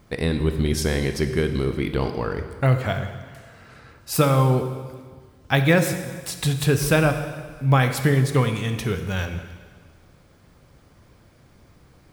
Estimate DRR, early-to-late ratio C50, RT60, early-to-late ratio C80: 7.5 dB, 9.0 dB, 1.6 s, 10.0 dB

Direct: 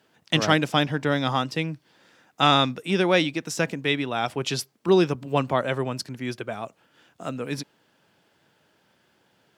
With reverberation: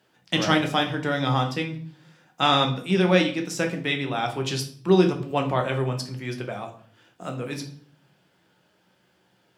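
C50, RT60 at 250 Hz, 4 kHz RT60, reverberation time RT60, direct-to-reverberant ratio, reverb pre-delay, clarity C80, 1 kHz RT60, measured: 10.5 dB, 0.75 s, 0.45 s, 0.50 s, 3.0 dB, 6 ms, 15.0 dB, 0.45 s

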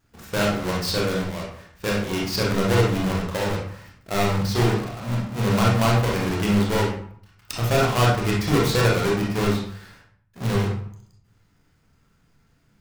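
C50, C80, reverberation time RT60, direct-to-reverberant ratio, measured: 2.0 dB, 7.5 dB, 0.60 s, -3.5 dB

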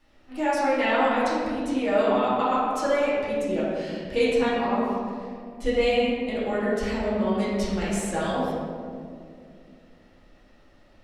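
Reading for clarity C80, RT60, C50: 0.5 dB, 2.4 s, -2.0 dB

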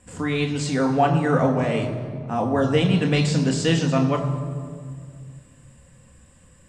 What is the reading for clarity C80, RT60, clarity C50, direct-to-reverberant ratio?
9.0 dB, 2.0 s, 8.5 dB, 2.5 dB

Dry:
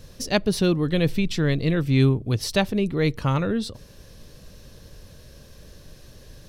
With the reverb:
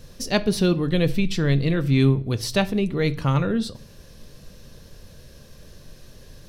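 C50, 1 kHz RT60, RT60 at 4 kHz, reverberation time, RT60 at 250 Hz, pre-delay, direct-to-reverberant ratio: 19.5 dB, 0.55 s, 0.45 s, 0.55 s, 0.65 s, 4 ms, 11.5 dB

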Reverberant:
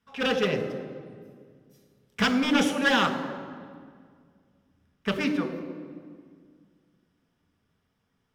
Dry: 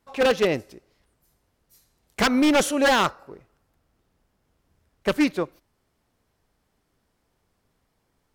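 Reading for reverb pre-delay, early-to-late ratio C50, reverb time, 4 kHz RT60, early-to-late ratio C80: 3 ms, 8.5 dB, 2.0 s, 1.3 s, 10.0 dB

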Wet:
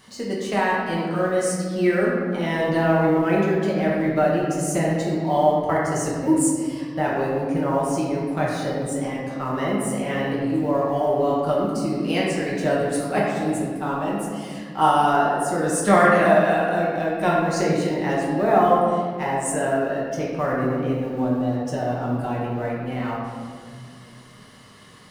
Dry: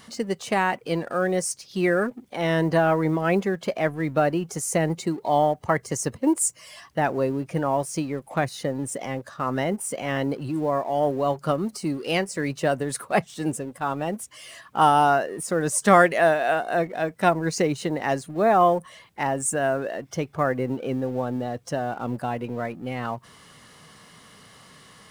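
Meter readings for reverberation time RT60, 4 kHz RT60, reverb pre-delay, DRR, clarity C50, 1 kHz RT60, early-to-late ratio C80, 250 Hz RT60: 2.0 s, 1.2 s, 5 ms, -5.5 dB, -0.5 dB, 1.7 s, 1.5 dB, 3.1 s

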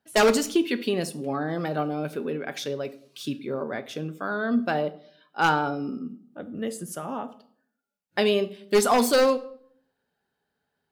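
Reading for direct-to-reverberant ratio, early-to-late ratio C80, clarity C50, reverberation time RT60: 10.5 dB, 20.5 dB, 16.5 dB, 0.60 s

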